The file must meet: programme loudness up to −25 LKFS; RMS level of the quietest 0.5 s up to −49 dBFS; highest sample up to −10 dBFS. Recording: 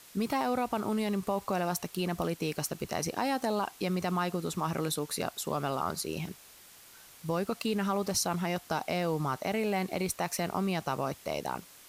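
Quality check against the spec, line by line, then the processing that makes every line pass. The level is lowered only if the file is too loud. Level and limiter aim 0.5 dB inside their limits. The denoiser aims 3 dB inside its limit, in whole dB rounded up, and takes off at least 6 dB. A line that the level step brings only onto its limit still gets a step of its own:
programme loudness −32.5 LKFS: in spec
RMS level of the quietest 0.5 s −54 dBFS: in spec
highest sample −17.0 dBFS: in spec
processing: no processing needed

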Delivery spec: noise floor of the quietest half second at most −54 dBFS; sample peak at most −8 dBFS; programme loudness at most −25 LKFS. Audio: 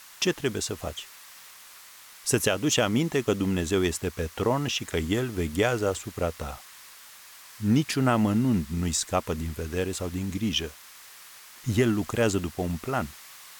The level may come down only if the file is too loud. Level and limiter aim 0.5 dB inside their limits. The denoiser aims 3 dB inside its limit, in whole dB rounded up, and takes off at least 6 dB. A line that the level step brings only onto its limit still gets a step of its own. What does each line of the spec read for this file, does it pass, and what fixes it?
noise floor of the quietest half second −49 dBFS: out of spec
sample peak −9.5 dBFS: in spec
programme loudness −27.0 LKFS: in spec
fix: broadband denoise 8 dB, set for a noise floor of −49 dBFS

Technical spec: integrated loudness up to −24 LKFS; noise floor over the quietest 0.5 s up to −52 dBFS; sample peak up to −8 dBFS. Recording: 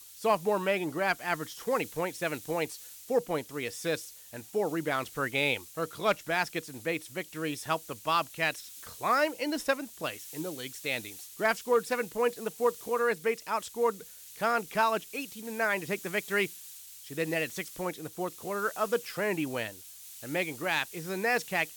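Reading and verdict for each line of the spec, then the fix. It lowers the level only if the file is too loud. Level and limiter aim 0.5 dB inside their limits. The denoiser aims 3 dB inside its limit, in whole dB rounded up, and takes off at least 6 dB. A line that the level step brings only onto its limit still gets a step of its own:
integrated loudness −31.5 LKFS: in spec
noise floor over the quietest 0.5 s −48 dBFS: out of spec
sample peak −15.0 dBFS: in spec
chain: broadband denoise 7 dB, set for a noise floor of −48 dBFS

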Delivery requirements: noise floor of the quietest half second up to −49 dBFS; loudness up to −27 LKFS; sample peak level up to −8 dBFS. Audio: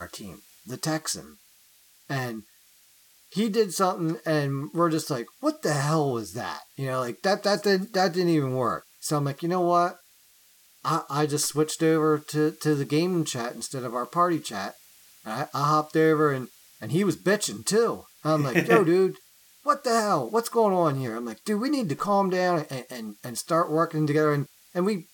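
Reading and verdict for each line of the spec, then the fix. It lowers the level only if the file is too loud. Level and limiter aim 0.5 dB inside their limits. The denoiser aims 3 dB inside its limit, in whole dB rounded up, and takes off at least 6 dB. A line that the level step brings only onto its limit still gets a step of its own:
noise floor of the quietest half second −58 dBFS: in spec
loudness −25.5 LKFS: out of spec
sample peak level −5.0 dBFS: out of spec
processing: level −2 dB
brickwall limiter −8.5 dBFS

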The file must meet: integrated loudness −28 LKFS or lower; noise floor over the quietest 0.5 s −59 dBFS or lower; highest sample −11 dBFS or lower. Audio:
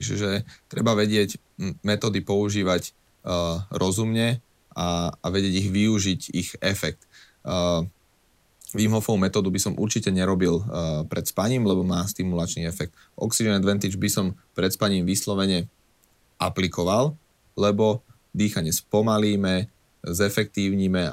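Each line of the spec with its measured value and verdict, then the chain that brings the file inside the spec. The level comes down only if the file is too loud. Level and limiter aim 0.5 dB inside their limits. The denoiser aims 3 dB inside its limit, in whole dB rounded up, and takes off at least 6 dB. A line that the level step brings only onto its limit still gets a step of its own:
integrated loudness −24.5 LKFS: out of spec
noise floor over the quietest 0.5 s −63 dBFS: in spec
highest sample −7.5 dBFS: out of spec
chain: level −4 dB

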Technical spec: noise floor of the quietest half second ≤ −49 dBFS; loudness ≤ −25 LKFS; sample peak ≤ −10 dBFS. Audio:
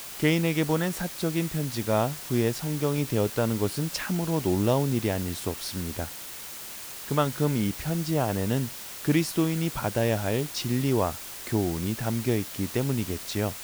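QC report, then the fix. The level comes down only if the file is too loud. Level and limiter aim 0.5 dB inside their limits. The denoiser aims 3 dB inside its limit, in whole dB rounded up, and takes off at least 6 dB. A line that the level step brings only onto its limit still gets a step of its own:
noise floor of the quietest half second −40 dBFS: out of spec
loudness −27.5 LKFS: in spec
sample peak −10.5 dBFS: in spec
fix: broadband denoise 12 dB, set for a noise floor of −40 dBFS

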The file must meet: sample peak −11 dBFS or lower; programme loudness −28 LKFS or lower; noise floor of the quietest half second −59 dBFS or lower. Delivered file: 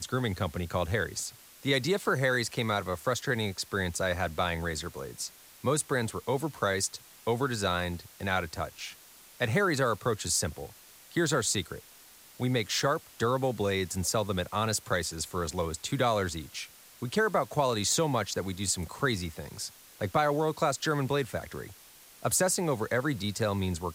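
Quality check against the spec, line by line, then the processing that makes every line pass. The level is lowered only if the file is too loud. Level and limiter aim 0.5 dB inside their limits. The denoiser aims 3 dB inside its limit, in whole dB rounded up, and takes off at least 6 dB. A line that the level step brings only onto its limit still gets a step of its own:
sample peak −12.5 dBFS: in spec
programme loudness −30.0 LKFS: in spec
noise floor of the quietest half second −54 dBFS: out of spec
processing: broadband denoise 8 dB, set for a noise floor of −54 dBFS

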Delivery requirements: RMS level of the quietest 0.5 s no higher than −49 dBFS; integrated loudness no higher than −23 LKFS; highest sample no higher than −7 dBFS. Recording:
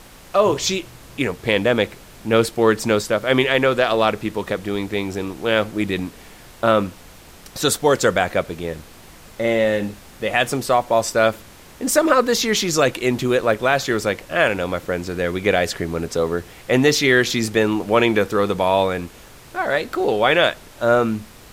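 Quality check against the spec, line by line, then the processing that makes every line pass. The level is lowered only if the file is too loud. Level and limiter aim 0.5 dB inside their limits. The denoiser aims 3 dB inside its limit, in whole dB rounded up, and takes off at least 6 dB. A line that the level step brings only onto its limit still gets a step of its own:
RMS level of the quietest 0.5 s −43 dBFS: out of spec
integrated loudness −19.5 LKFS: out of spec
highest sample −3.0 dBFS: out of spec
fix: broadband denoise 6 dB, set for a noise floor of −43 dBFS
level −4 dB
brickwall limiter −7.5 dBFS

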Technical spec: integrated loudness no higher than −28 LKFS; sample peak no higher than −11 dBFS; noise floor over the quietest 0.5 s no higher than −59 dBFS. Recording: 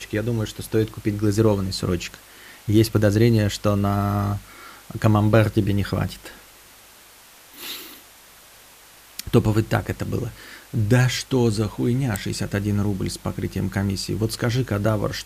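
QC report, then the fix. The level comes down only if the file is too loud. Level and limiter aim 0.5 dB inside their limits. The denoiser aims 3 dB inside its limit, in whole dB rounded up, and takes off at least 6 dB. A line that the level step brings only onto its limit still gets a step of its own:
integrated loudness −22.5 LKFS: out of spec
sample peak −3.5 dBFS: out of spec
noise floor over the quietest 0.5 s −48 dBFS: out of spec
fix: broadband denoise 8 dB, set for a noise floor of −48 dBFS
level −6 dB
brickwall limiter −11.5 dBFS

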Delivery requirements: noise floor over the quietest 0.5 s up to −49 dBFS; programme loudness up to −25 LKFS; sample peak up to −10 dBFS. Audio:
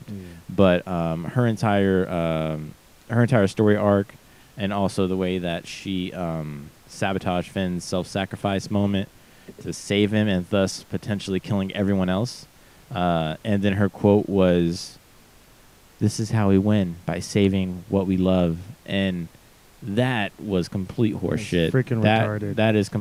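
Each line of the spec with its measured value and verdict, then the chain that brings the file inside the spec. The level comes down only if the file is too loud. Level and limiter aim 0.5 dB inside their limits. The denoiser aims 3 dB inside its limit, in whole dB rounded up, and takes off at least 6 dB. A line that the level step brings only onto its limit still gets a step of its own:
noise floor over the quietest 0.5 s −52 dBFS: in spec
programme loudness −23.0 LKFS: out of spec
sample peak −3.0 dBFS: out of spec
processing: level −2.5 dB
brickwall limiter −10.5 dBFS

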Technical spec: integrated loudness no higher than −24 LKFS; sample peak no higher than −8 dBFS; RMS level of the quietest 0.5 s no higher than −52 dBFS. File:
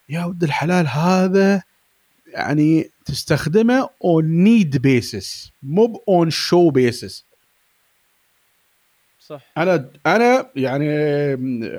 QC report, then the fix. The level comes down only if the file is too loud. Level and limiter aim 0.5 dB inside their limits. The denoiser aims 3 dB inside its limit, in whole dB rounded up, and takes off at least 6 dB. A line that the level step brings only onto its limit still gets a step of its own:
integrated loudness −17.5 LKFS: out of spec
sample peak −4.5 dBFS: out of spec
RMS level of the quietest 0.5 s −62 dBFS: in spec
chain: level −7 dB

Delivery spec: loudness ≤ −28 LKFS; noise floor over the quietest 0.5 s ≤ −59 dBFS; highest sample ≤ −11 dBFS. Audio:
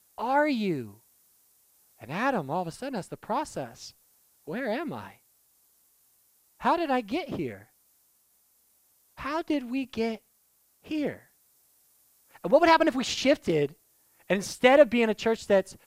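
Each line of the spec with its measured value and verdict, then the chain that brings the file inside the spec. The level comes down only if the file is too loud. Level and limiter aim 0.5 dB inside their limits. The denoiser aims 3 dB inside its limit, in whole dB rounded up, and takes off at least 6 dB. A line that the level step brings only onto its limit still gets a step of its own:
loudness −27.0 LKFS: out of spec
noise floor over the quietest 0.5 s −67 dBFS: in spec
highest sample −7.5 dBFS: out of spec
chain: level −1.5 dB
brickwall limiter −11.5 dBFS

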